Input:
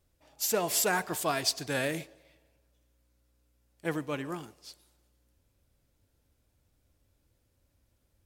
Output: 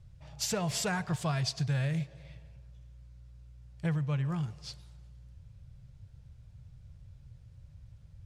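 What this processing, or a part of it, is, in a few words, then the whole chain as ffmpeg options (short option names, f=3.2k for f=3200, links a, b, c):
jukebox: -af "lowpass=6.2k,lowshelf=f=200:t=q:w=3:g=12.5,acompressor=threshold=-36dB:ratio=4,volume=5.5dB"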